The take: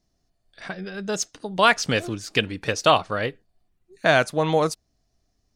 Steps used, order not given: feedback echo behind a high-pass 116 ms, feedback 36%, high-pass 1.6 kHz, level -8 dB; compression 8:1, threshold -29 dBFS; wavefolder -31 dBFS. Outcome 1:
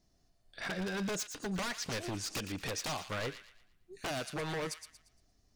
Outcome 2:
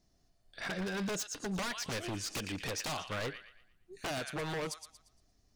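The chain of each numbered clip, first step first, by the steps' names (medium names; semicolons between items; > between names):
compression > wavefolder > feedback echo behind a high-pass; compression > feedback echo behind a high-pass > wavefolder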